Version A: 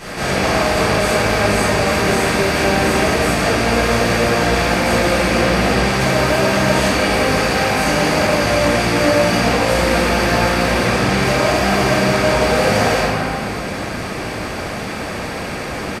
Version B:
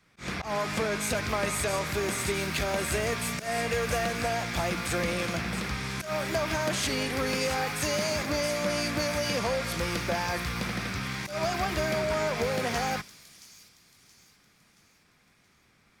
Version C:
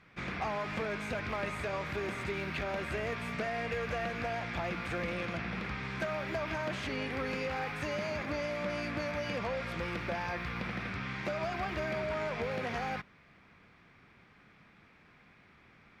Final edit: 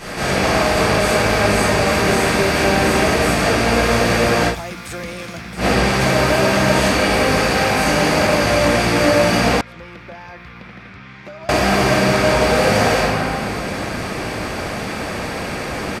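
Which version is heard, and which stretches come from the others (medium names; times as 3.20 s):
A
4.52–5.61 s: from B, crossfade 0.10 s
9.61–11.49 s: from C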